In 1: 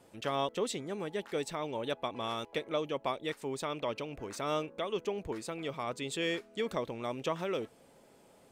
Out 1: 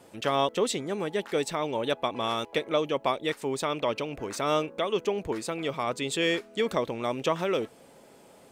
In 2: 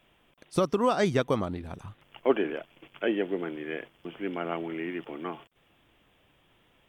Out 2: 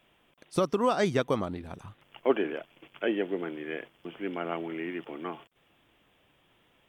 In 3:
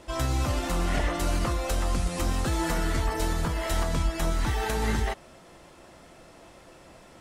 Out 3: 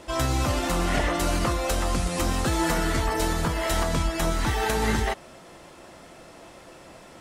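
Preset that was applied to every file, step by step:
bass shelf 88 Hz -6.5 dB; peak normalisation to -12 dBFS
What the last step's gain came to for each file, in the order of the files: +7.5 dB, -0.5 dB, +4.5 dB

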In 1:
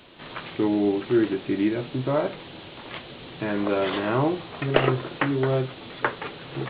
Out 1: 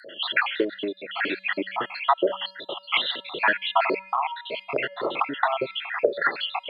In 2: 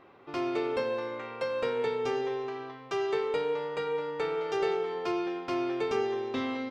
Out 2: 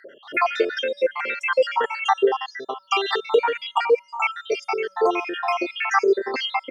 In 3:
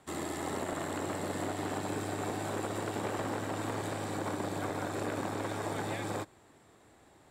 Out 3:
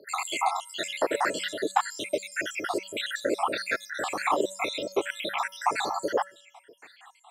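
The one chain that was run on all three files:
random holes in the spectrogram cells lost 74%; bass shelf 190 Hz -7.5 dB; feedback comb 190 Hz, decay 0.7 s, harmonics odd, mix 50%; compression 4:1, threshold -40 dBFS; frequency weighting A; sweeping bell 1.8 Hz 390–4000 Hz +12 dB; peak normalisation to -6 dBFS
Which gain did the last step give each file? +17.5 dB, +21.0 dB, +18.0 dB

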